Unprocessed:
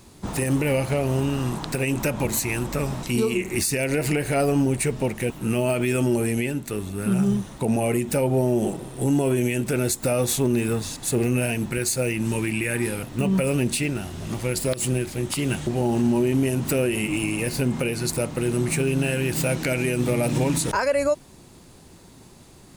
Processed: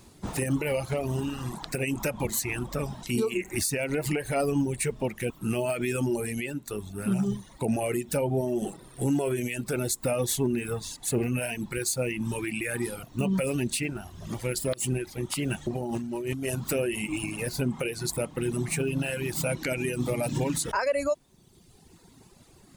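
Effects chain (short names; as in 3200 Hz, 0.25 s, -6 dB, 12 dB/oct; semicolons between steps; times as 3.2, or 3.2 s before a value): reverb removal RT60 1.4 s; 15.75–16.56 negative-ratio compressor -28 dBFS, ratio -1; gain -3.5 dB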